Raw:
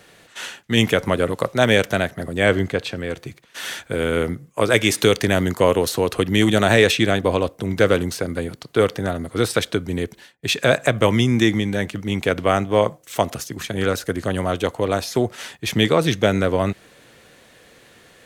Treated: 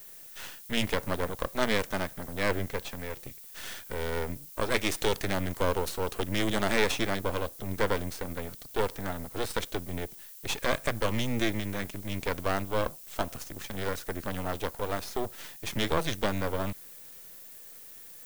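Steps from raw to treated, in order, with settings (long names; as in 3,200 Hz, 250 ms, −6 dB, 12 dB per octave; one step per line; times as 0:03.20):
half-wave rectification
background noise violet −41 dBFS
level −7 dB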